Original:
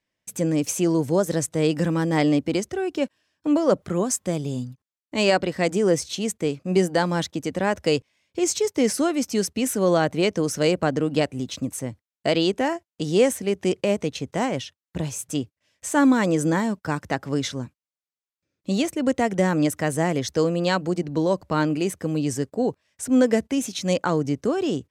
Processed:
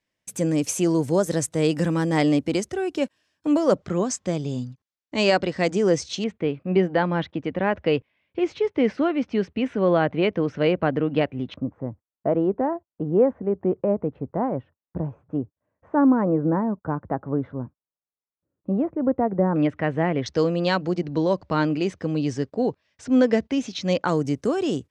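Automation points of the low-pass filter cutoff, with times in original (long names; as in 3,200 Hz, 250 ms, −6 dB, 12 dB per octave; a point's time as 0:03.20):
low-pass filter 24 dB per octave
12,000 Hz
from 0:03.75 6,700 Hz
from 0:06.24 3,000 Hz
from 0:11.54 1,200 Hz
from 0:19.56 2,800 Hz
from 0:20.26 5,300 Hz
from 0:24.08 11,000 Hz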